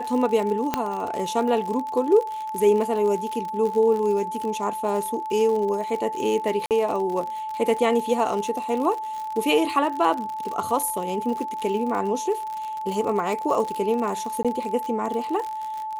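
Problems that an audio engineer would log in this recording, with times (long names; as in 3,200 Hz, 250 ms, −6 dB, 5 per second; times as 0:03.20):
surface crackle 60 per second −28 dBFS
whistle 870 Hz −28 dBFS
0:00.74: click −7 dBFS
0:06.66–0:06.71: drop-out 48 ms
0:14.43–0:14.45: drop-out 16 ms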